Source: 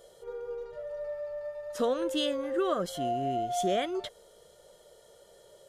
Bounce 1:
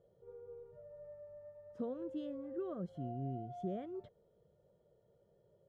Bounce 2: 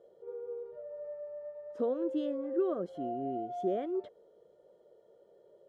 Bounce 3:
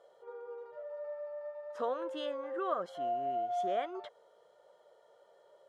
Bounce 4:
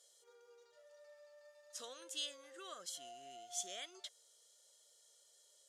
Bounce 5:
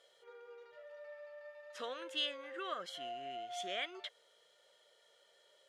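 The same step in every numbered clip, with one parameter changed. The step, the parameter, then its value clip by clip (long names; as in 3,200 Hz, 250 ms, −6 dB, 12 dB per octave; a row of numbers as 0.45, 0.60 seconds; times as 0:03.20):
resonant band-pass, frequency: 130, 340, 960, 6,700, 2,400 Hertz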